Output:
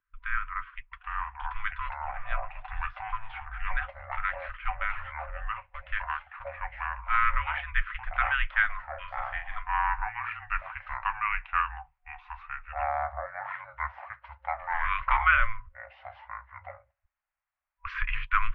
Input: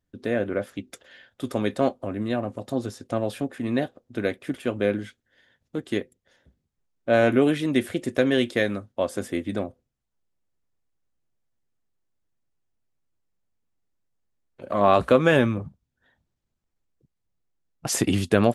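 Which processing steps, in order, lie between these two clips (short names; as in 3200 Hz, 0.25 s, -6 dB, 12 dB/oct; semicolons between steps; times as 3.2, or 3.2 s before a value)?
FFT band-reject 250–1200 Hz; echoes that change speed 0.744 s, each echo -4 st, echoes 2; 8.85–9.56 doubler 42 ms -6 dB; mistuned SSB -220 Hz 240–2600 Hz; gain +5 dB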